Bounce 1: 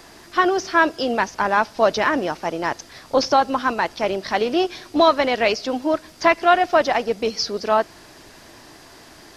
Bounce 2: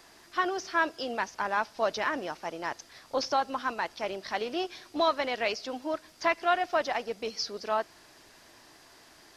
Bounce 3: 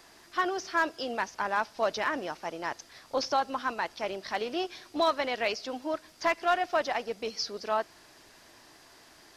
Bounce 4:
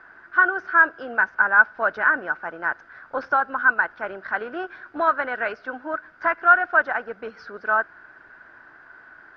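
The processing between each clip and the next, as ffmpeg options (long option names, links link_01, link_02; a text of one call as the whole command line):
ffmpeg -i in.wav -af "lowshelf=frequency=480:gain=-6.5,volume=-9dB" out.wav
ffmpeg -i in.wav -af "asoftclip=type=hard:threshold=-17.5dB" out.wav
ffmpeg -i in.wav -af "lowpass=frequency=1500:width_type=q:width=14" out.wav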